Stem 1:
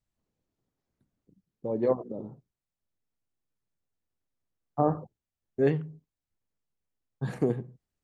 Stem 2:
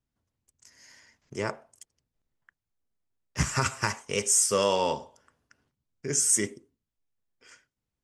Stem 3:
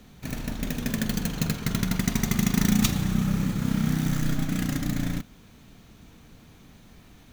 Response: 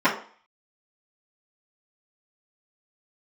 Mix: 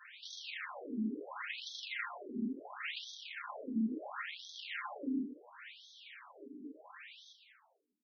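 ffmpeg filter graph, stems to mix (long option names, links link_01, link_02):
-filter_complex "[0:a]highpass=170,aeval=exprs='abs(val(0))':channel_layout=same,volume=-11dB,asplit=2[link_01][link_02];[link_02]volume=-21dB[link_03];[1:a]acompressor=threshold=-30dB:ratio=6,volume=-12dB[link_04];[2:a]acompressor=threshold=-32dB:ratio=2,equalizer=frequency=2600:width=0.68:gain=9.5,alimiter=limit=-16.5dB:level=0:latency=1:release=486,volume=1.5dB,asplit=3[link_05][link_06][link_07];[link_06]volume=-12dB[link_08];[link_07]volume=-5.5dB[link_09];[3:a]atrim=start_sample=2205[link_10];[link_03][link_08]amix=inputs=2:normalize=0[link_11];[link_11][link_10]afir=irnorm=-1:irlink=0[link_12];[link_09]aecho=0:1:121|242|363|484|605|726|847|968|1089:1|0.57|0.325|0.185|0.106|0.0602|0.0343|0.0195|0.0111[link_13];[link_01][link_04][link_05][link_12][link_13]amix=inputs=5:normalize=0,flanger=delay=4.5:depth=4.1:regen=57:speed=0.26:shape=sinusoidal,asoftclip=type=tanh:threshold=-28.5dB,afftfilt=real='re*between(b*sr/1024,290*pow(4600/290,0.5+0.5*sin(2*PI*0.72*pts/sr))/1.41,290*pow(4600/290,0.5+0.5*sin(2*PI*0.72*pts/sr))*1.41)':imag='im*between(b*sr/1024,290*pow(4600/290,0.5+0.5*sin(2*PI*0.72*pts/sr))/1.41,290*pow(4600/290,0.5+0.5*sin(2*PI*0.72*pts/sr))*1.41)':win_size=1024:overlap=0.75"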